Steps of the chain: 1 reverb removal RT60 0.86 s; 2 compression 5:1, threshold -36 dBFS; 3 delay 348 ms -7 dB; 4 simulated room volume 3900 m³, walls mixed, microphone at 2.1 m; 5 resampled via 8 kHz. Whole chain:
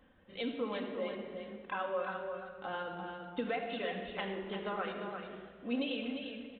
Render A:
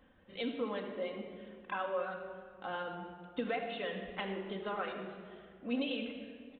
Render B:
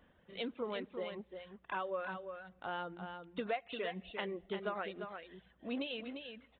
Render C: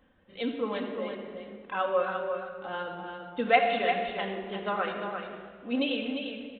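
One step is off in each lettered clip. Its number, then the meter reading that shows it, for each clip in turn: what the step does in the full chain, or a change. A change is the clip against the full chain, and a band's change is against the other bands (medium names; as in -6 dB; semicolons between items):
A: 3, momentary loudness spread change +4 LU; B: 4, crest factor change +4.0 dB; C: 2, crest factor change +9.0 dB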